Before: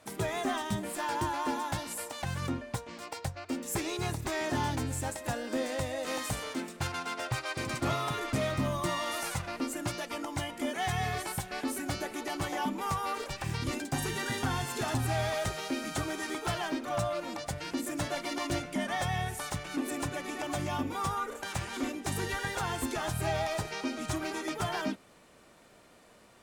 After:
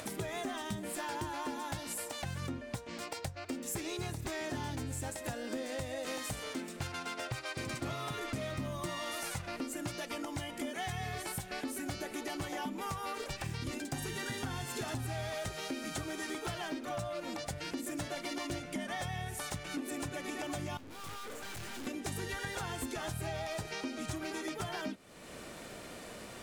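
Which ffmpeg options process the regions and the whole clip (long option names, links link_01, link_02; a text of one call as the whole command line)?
ffmpeg -i in.wav -filter_complex "[0:a]asettb=1/sr,asplit=3[link_01][link_02][link_03];[link_01]atrim=end=20.774[link_04];[link_02]atrim=start=20.77:end=21.87,asetpts=PTS-STARTPTS,afade=type=in:duration=0.004:curve=qsin,afade=type=out:start_time=1.096:duration=0.004:curve=qsin,asplit=2[link_05][link_06];[link_06]adelay=20,volume=-11.5dB[link_07];[link_05][link_07]amix=inputs=2:normalize=0,atrim=end_sample=48510,aeval=exprs='(tanh(316*val(0)+0.7)-tanh(0.7))/316':channel_layout=same[link_08];[link_03]atrim=start=21.866[link_09];[link_04][link_08]acrossfade=duration=0.004:curve1=hsin:curve2=qsin[link_10];[link_10][link_09]acrossfade=duration=0.004:curve1=qsin:curve2=hsin,acompressor=mode=upward:threshold=-34dB:ratio=2.5,equalizer=frequency=1000:width_type=o:width=0.96:gain=-4,acompressor=threshold=-35dB:ratio=6" out.wav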